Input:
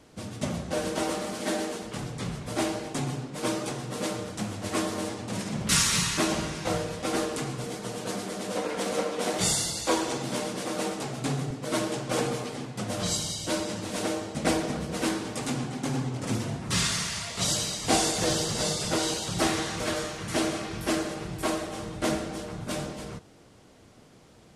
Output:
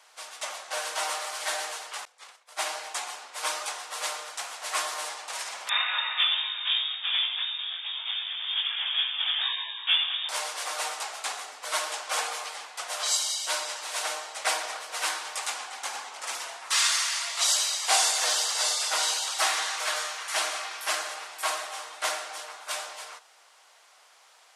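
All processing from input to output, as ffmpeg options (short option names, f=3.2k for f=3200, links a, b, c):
-filter_complex "[0:a]asettb=1/sr,asplit=3[a][b][c];[a]atrim=end=2.054[d];[b]atrim=start=2.05:end=2.66,asetpts=PTS-STARTPTS,afade=t=in:d=0.004:c=qsin,afade=t=out:st=0.606:d=0.004:c=qsin,aeval=exprs='val(0)+0.00355*sin(2*PI*510*n/s)':c=same,agate=range=-33dB:threshold=-25dB:ratio=3:release=100:detection=peak[e];[c]atrim=start=2.656[f];[d][e]acrossfade=d=0.004:c1=hsin:c2=qsin[g];[g][f]acrossfade=d=0.004:c1=qsin:c2=hsin,asettb=1/sr,asplit=3[h][i][j];[h]atrim=end=5.694[k];[i]atrim=start=5.69:end=10.29,asetpts=PTS-STARTPTS,afade=t=in:d=0.004:c=qsin,afade=t=out:st=4.596:d=0.004:c=qsin,flanger=delay=18:depth=2.4:speed=1.9,lowpass=f=3.2k:t=q:w=0.5098,lowpass=f=3.2k:t=q:w=0.6013,lowpass=f=3.2k:t=q:w=0.9,lowpass=f=3.2k:t=q:w=2.563,afreqshift=-3800[l];[j]atrim=start=10.286[m];[k][l]acrossfade=d=0.004:c1=hsin:c2=qsin[n];[n][m]acrossfade=d=0.004:c1=qsin:c2=hsin,highpass=f=810:w=0.5412,highpass=f=810:w=1.3066,acontrast=58,volume=-2dB"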